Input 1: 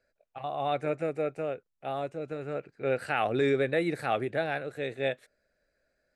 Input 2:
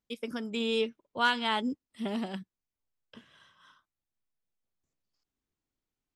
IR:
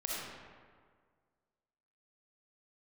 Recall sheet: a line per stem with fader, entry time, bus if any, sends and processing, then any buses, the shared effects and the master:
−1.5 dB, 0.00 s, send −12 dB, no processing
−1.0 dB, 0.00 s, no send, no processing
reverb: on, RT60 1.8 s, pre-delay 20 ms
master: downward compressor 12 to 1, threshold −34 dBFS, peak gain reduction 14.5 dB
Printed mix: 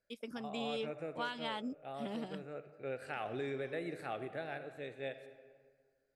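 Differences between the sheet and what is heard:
stem 1 −1.5 dB → −13.0 dB
stem 2 −1.0 dB → −8.0 dB

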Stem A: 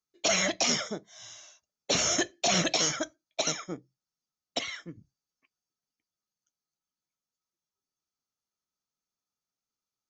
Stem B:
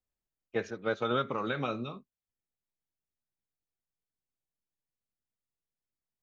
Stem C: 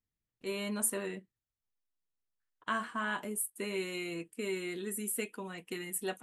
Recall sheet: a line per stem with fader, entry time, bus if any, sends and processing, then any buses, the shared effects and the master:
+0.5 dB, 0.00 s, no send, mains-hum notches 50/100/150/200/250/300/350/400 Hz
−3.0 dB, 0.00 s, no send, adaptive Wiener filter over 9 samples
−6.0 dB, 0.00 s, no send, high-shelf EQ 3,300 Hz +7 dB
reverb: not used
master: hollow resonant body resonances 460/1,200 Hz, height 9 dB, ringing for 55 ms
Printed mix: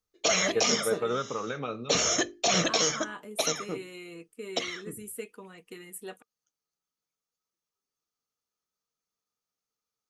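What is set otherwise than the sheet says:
stem B: missing adaptive Wiener filter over 9 samples
stem C: missing high-shelf EQ 3,300 Hz +7 dB

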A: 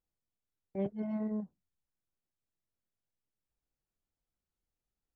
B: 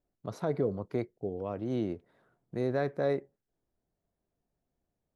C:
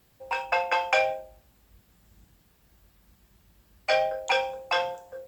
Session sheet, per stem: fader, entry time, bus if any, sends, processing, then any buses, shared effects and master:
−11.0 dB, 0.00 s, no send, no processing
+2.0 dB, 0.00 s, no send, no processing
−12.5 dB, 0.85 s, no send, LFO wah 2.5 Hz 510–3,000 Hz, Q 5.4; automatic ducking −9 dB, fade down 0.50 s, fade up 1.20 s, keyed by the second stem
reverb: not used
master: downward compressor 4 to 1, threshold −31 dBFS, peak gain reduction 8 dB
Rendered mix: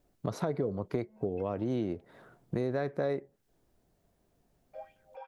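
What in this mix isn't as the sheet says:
stem A −11.0 dB → −18.5 dB
stem B +2.0 dB → +12.5 dB

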